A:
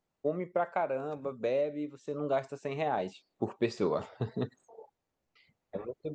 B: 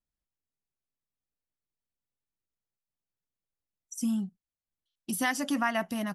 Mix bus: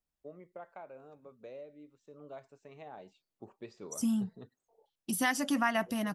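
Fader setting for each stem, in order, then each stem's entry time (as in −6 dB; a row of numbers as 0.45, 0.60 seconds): −17.0, −1.0 decibels; 0.00, 0.00 seconds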